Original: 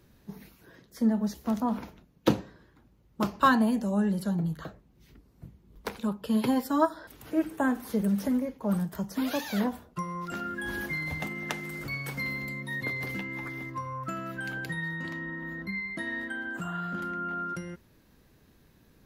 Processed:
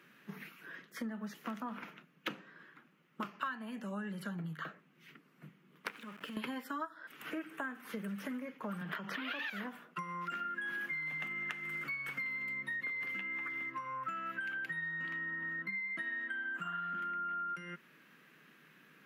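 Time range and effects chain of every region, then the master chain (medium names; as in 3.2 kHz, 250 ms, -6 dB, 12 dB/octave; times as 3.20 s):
5.90–6.37 s: peaking EQ 290 Hz +12.5 dB 0.23 oct + compression 5:1, threshold -41 dBFS + small samples zeroed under -50 dBFS
8.81–9.50 s: high-pass 220 Hz + resonant high shelf 5 kHz -12 dB, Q 1.5 + level flattener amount 70%
whole clip: elliptic high-pass 150 Hz; high-order bell 1.9 kHz +14 dB; compression 6:1, threshold -35 dBFS; trim -3.5 dB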